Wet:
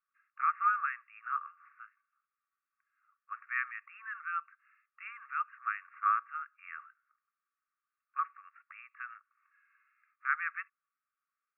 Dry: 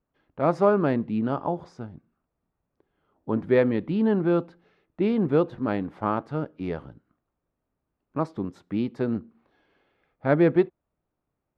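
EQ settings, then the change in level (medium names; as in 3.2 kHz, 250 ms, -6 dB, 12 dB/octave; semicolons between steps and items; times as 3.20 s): brick-wall FIR band-pass 1.1–2.8 kHz; distance through air 270 m; tilt EQ -3.5 dB/octave; +6.0 dB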